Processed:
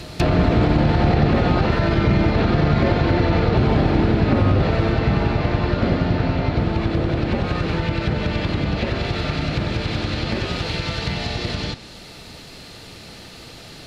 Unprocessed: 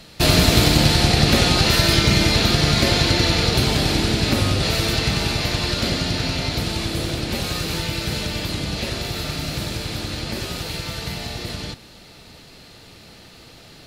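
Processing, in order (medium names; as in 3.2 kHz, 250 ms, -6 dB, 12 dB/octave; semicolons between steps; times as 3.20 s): peak limiter -10.5 dBFS, peak gain reduction 8 dB; low-pass that closes with the level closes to 1.4 kHz, closed at -20 dBFS; reverse echo 198 ms -20.5 dB; trim +5 dB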